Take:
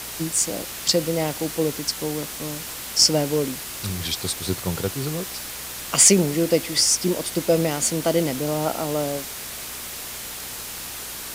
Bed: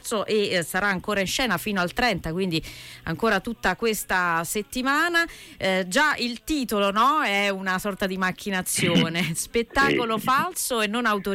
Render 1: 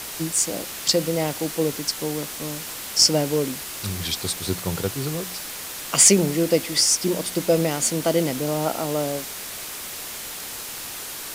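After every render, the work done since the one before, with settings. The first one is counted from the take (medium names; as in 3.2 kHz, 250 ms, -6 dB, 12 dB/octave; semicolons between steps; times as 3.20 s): de-hum 60 Hz, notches 4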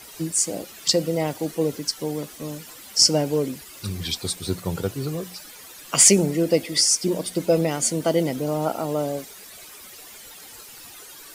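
noise reduction 13 dB, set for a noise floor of -34 dBFS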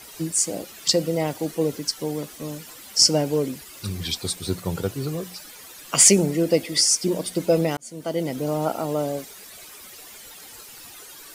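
7.77–8.46 s: fade in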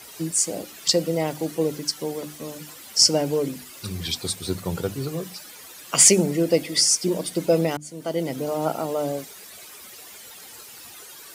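high-pass 59 Hz; hum notches 50/100/150/200/250/300 Hz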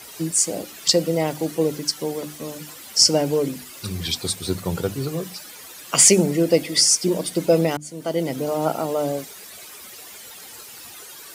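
trim +2.5 dB; peak limiter -2 dBFS, peak gain reduction 2.5 dB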